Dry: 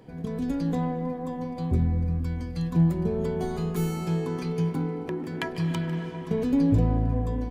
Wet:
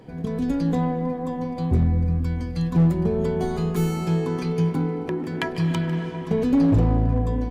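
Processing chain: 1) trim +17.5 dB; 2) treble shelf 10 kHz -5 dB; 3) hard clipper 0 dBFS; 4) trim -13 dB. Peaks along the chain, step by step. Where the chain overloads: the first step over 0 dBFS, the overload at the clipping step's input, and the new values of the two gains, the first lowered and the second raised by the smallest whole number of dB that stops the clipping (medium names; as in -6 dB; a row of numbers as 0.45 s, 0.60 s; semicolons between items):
+7.0 dBFS, +7.0 dBFS, 0.0 dBFS, -13.0 dBFS; step 1, 7.0 dB; step 1 +10.5 dB, step 4 -6 dB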